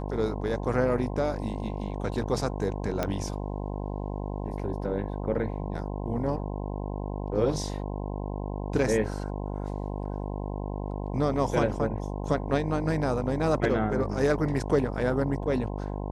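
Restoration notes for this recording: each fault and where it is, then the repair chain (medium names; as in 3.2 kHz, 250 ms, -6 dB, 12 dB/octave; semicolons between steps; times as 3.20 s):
buzz 50 Hz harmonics 21 -33 dBFS
3.03 s: pop -13 dBFS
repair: de-click; de-hum 50 Hz, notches 21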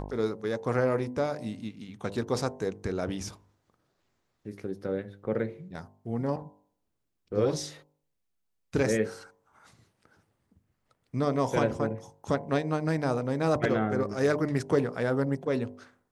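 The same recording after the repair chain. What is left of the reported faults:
nothing left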